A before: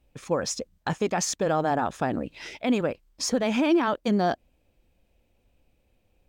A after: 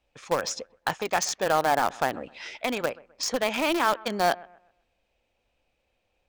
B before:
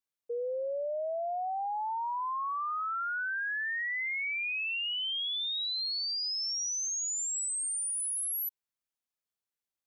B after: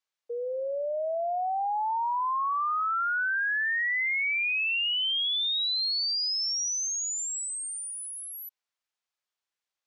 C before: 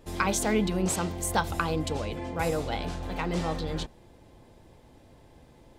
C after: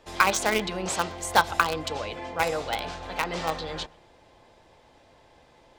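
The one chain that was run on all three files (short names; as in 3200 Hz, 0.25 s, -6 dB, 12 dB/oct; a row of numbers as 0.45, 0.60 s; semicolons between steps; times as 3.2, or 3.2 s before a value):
three-band isolator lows -13 dB, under 510 Hz, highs -15 dB, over 7200 Hz; in parallel at -7 dB: bit-crush 4-bit; on the sum: analogue delay 0.128 s, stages 2048, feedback 32%, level -22.5 dB; match loudness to -27 LUFS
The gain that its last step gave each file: +1.0, +6.0, +4.5 dB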